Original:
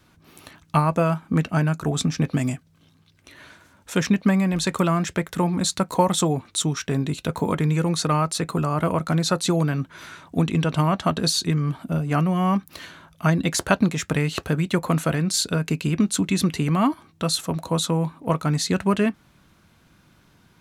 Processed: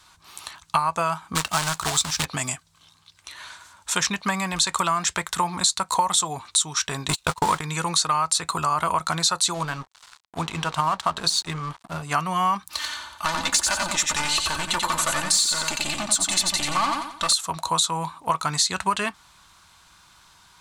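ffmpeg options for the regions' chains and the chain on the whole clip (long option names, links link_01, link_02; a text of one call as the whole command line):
ffmpeg -i in.wav -filter_complex "[0:a]asettb=1/sr,asplit=3[link_01][link_02][link_03];[link_01]atrim=end=1.354[link_04];[link_02]atrim=start=1.35:end=2.25,asetpts=PTS-STARTPTS,afade=type=in:duration=0.004:curve=qsin,afade=type=out:start_time=0.896:duration=0.004:curve=qsin,asubboost=boost=5.5:cutoff=120,acrusher=bits=2:mode=log:mix=0:aa=0.000001[link_05];[link_03]atrim=start=2.246[link_06];[link_04][link_05]acrossfade=duration=0.004:curve1=hsin:curve2=qsin[link_07];[link_07][link_06]acrossfade=duration=0.004:curve1=qsin:curve2=hsin,asettb=1/sr,asplit=3[link_08][link_09][link_10];[link_08]atrim=end=7.084[link_11];[link_09]atrim=start=7.08:end=7.61,asetpts=PTS-STARTPTS,afade=type=in:duration=0.004:curve=qsin,afade=type=out:start_time=0.526:duration=0.004:curve=qsin,aeval=exprs='val(0)+0.5*0.0282*sgn(val(0))':channel_layout=same,agate=range=-40dB:threshold=-25dB:ratio=16:release=100:detection=peak,acontrast=86[link_12];[link_10]atrim=start=7.606[link_13];[link_11][link_12]acrossfade=duration=0.004:curve1=hsin:curve2=qsin[link_14];[link_14][link_13]acrossfade=duration=0.004:curve1=qsin:curve2=hsin,asettb=1/sr,asplit=3[link_15][link_16][link_17];[link_15]atrim=end=9.544[link_18];[link_16]atrim=start=9.54:end=12.03,asetpts=PTS-STARTPTS,afade=type=in:duration=0.004:curve=qsin,afade=type=out:start_time=2.486:duration=0.004:curve=qsin,highshelf=frequency=2600:gain=-7,bandreject=frequency=60:width_type=h:width=6,bandreject=frequency=120:width_type=h:width=6,bandreject=frequency=180:width_type=h:width=6,bandreject=frequency=240:width_type=h:width=6,bandreject=frequency=300:width_type=h:width=6,bandreject=frequency=360:width_type=h:width=6,bandreject=frequency=420:width_type=h:width=6,bandreject=frequency=480:width_type=h:width=6,bandreject=frequency=540:width_type=h:width=6,aeval=exprs='sgn(val(0))*max(abs(val(0))-0.0112,0)':channel_layout=same[link_19];[link_17]atrim=start=12.026[link_20];[link_18][link_19]acrossfade=duration=0.004:curve1=hsin:curve2=qsin[link_21];[link_21][link_20]acrossfade=duration=0.004:curve1=qsin:curve2=hsin,asettb=1/sr,asplit=3[link_22][link_23][link_24];[link_22]atrim=end=12.704[link_25];[link_23]atrim=start=12.7:end=17.33,asetpts=PTS-STARTPTS,afade=type=in:duration=0.004:curve=qsin,afade=type=out:start_time=4.626:duration=0.004:curve=qsin,asoftclip=type=hard:threshold=-21dB,aecho=1:1:3.4:0.57,atrim=end_sample=204183,aecho=1:1:89|178|267|356|445:0.631|0.233|0.0864|0.032|0.0118,atrim=end_sample=204183[link_26];[link_24]atrim=start=17.326[link_27];[link_25][link_26]acrossfade=duration=0.004:curve1=hsin:curve2=qsin[link_28];[link_28][link_27]acrossfade=duration=0.004:curve1=qsin:curve2=hsin,equalizer=frequency=125:width_type=o:width=1:gain=-7,equalizer=frequency=250:width_type=o:width=1:gain=-11,equalizer=frequency=500:width_type=o:width=1:gain=-7,equalizer=frequency=1000:width_type=o:width=1:gain=11,equalizer=frequency=4000:width_type=o:width=1:gain=8,equalizer=frequency=8000:width_type=o:width=1:gain=12,acompressor=threshold=-18dB:ratio=6" out.wav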